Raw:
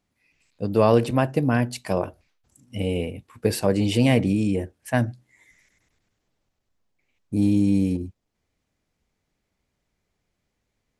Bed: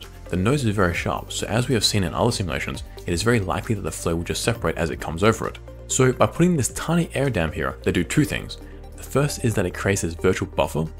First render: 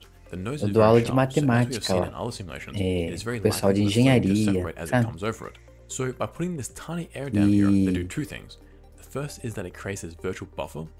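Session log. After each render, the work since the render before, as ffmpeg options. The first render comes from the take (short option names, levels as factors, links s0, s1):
-filter_complex "[1:a]volume=0.282[s0];[0:a][s0]amix=inputs=2:normalize=0"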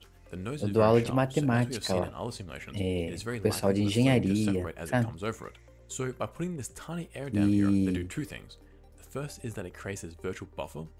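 -af "volume=0.562"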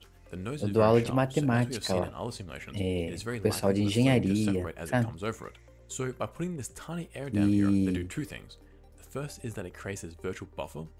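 -af anull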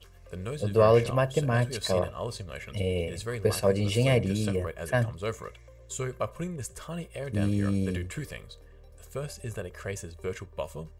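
-af "aecho=1:1:1.8:0.64"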